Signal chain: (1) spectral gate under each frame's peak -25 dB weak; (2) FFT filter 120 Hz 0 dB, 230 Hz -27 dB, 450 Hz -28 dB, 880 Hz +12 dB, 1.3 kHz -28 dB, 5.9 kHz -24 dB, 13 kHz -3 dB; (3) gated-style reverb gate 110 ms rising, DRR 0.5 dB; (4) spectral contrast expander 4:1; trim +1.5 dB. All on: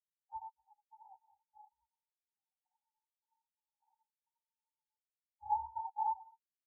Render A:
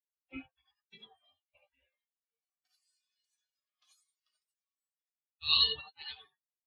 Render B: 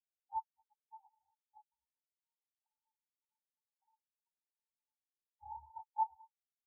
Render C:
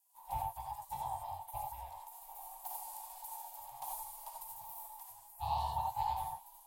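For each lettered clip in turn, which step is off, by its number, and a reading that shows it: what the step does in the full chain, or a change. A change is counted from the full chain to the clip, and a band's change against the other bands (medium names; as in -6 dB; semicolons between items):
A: 2, crest factor change +6.0 dB; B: 3, momentary loudness spread change +7 LU; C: 4, momentary loudness spread change -3 LU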